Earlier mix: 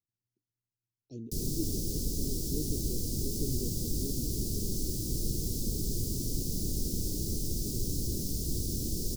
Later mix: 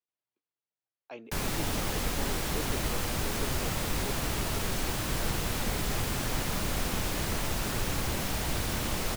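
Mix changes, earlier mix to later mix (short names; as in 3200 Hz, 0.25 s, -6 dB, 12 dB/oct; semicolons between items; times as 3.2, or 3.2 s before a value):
speech: add BPF 370–4400 Hz; master: remove elliptic band-stop 380–5000 Hz, stop band 80 dB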